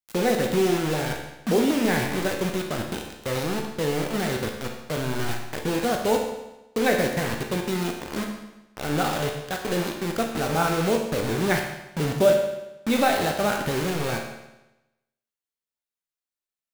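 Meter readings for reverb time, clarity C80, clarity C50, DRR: 0.95 s, 7.0 dB, 4.5 dB, 1.5 dB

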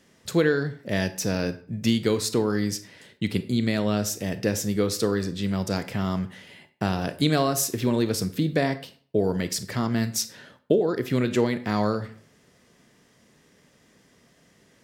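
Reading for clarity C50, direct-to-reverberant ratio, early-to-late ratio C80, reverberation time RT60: 14.5 dB, 11.0 dB, 18.5 dB, 0.50 s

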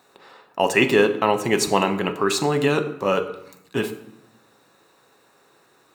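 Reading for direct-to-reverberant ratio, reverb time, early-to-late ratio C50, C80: 7.0 dB, 0.75 s, 12.5 dB, 15.0 dB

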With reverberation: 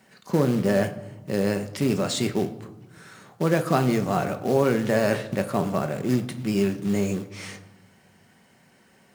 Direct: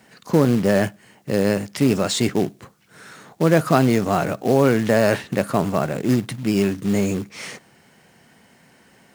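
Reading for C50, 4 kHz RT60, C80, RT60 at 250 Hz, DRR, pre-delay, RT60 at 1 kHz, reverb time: 13.5 dB, 0.65 s, 16.0 dB, 1.7 s, 7.5 dB, 5 ms, 1.2 s, 1.1 s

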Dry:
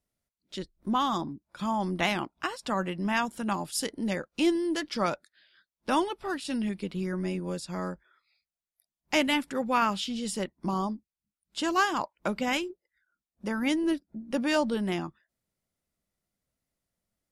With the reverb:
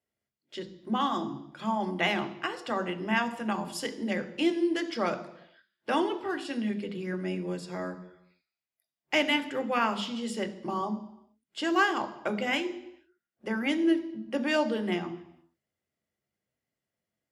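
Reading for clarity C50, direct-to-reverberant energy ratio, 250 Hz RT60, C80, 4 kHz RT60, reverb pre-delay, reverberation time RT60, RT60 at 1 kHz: 13.5 dB, 8.0 dB, 0.80 s, 15.5 dB, 0.80 s, 3 ms, 0.80 s, 0.85 s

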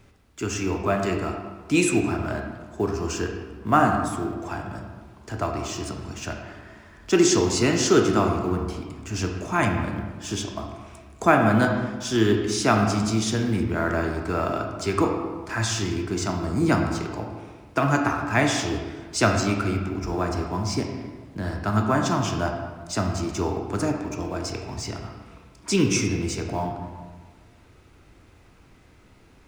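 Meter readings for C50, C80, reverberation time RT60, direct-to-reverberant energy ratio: 4.0 dB, 6.0 dB, 1.5 s, 2.0 dB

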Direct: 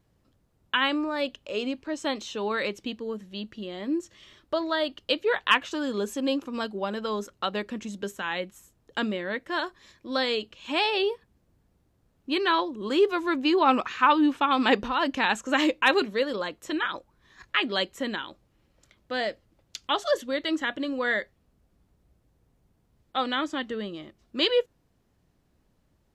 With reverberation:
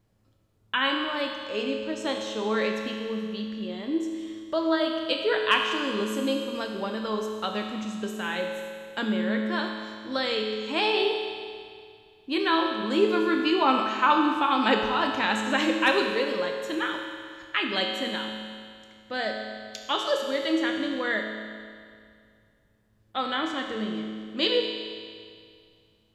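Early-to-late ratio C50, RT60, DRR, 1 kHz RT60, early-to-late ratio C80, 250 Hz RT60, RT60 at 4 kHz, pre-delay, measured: 3.5 dB, 2.2 s, 1.5 dB, 2.2 s, 4.5 dB, 2.2 s, 2.2 s, 9 ms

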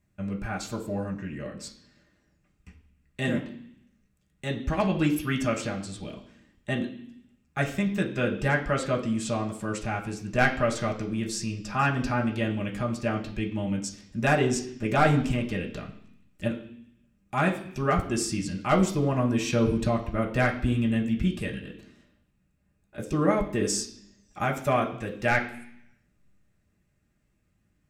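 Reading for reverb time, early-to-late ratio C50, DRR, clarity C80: 0.65 s, 10.5 dB, 0.0 dB, 13.5 dB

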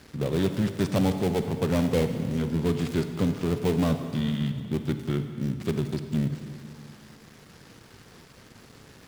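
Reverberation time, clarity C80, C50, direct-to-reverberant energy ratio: 2.3 s, 9.0 dB, 8.0 dB, 7.5 dB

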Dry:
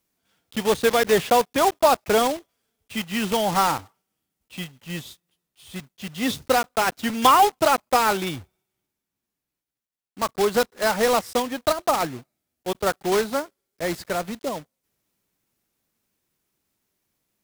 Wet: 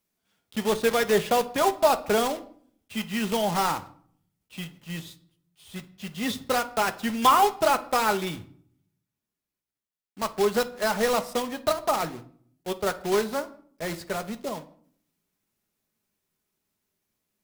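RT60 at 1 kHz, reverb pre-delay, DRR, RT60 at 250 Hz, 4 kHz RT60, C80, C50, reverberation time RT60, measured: 0.55 s, 5 ms, 7.5 dB, 0.80 s, 0.40 s, 21.0 dB, 16.5 dB, 0.55 s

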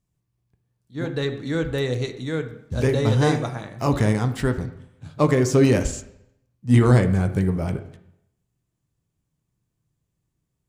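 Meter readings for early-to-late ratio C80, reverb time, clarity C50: 14.5 dB, 0.75 s, 11.5 dB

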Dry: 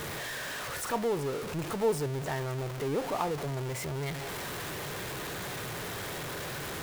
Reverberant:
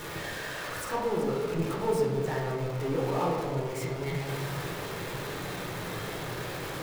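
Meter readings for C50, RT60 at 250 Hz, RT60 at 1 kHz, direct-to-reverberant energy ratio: 1.5 dB, 2.3 s, 1.4 s, -3.0 dB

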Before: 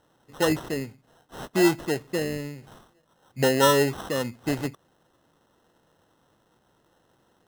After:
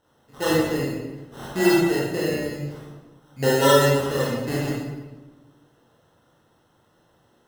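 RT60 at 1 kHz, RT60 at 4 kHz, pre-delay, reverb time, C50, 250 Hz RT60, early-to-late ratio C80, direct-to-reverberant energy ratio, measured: 1.1 s, 0.85 s, 22 ms, 1.2 s, -2.0 dB, 1.6 s, 1.5 dB, -7.0 dB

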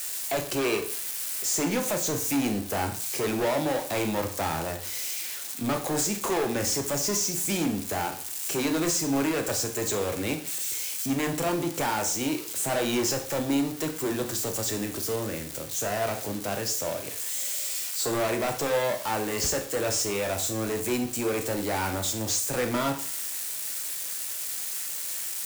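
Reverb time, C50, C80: 0.45 s, 10.5 dB, 14.5 dB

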